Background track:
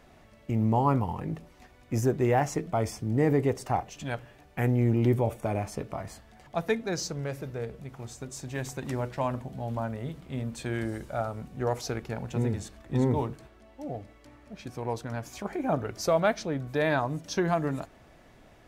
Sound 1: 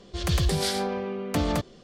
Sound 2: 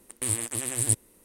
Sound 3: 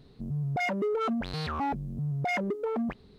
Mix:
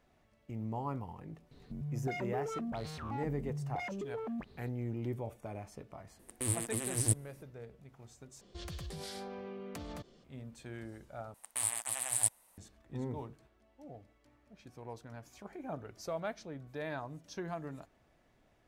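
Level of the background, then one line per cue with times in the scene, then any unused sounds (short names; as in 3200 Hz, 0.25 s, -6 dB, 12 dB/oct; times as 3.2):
background track -14 dB
1.51 add 3 -2.5 dB + limiter -32.5 dBFS
6.19 add 2 -4.5 dB + tilt shelf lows +3.5 dB
8.41 replace with 1 -11 dB + compressor, threshold -29 dBFS
11.34 replace with 2 -5.5 dB + resonant low shelf 530 Hz -11.5 dB, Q 3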